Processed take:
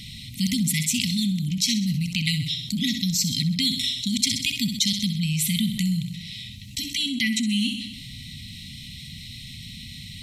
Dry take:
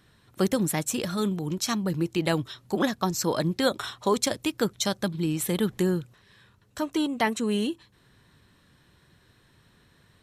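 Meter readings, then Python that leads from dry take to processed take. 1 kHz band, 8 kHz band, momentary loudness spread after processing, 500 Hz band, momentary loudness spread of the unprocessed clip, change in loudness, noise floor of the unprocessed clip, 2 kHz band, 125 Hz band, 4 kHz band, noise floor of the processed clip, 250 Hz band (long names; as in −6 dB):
below −40 dB, +6.0 dB, 16 LU, below −35 dB, 5 LU, +3.5 dB, −62 dBFS, +3.0 dB, +5.5 dB, +11.0 dB, −40 dBFS, +2.0 dB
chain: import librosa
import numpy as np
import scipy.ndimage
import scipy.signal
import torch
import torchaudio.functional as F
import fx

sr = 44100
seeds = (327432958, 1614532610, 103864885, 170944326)

y = fx.brickwall_bandstop(x, sr, low_hz=270.0, high_hz=1900.0)
y = fx.peak_eq(y, sr, hz=4000.0, db=7.0, octaves=1.3)
y = fx.echo_feedback(y, sr, ms=64, feedback_pct=49, wet_db=-12)
y = fx.env_flatten(y, sr, amount_pct=50)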